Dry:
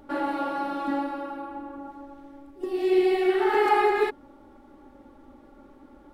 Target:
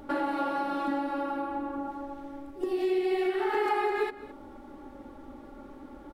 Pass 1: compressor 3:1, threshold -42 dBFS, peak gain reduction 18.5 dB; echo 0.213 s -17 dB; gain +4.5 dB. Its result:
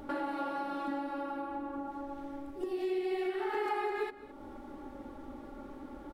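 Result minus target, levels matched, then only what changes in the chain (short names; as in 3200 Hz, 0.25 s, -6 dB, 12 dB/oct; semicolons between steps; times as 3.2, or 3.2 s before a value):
compressor: peak gain reduction +6 dB
change: compressor 3:1, threshold -33 dBFS, peak gain reduction 12.5 dB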